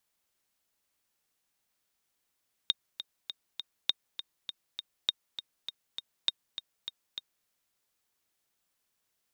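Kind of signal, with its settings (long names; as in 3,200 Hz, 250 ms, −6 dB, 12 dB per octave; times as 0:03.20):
click track 201 BPM, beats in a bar 4, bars 4, 3,700 Hz, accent 11.5 dB −12 dBFS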